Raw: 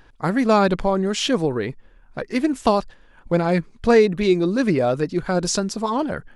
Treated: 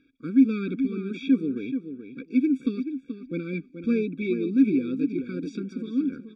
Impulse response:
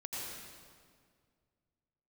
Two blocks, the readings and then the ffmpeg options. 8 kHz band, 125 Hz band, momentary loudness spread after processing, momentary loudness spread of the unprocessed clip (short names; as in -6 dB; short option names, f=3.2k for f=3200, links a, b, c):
under -30 dB, -10.5 dB, 12 LU, 8 LU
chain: -filter_complex "[0:a]asplit=3[a][b][c];[a]bandpass=f=270:t=q:w=8,volume=0dB[d];[b]bandpass=f=2.29k:t=q:w=8,volume=-6dB[e];[c]bandpass=f=3.01k:t=q:w=8,volume=-9dB[f];[d][e][f]amix=inputs=3:normalize=0,acrossover=split=3700[g][h];[h]acompressor=threshold=-59dB:ratio=4:attack=1:release=60[i];[g][i]amix=inputs=2:normalize=0,asplit=2[j][k];[k]adelay=430,lowpass=f=3.3k:p=1,volume=-9dB,asplit=2[l][m];[m]adelay=430,lowpass=f=3.3k:p=1,volume=0.21,asplit=2[n][o];[o]adelay=430,lowpass=f=3.3k:p=1,volume=0.21[p];[j][l][n][p]amix=inputs=4:normalize=0,afftfilt=real='re*eq(mod(floor(b*sr/1024/550),2),0)':imag='im*eq(mod(floor(b*sr/1024/550),2),0)':win_size=1024:overlap=0.75,volume=5dB"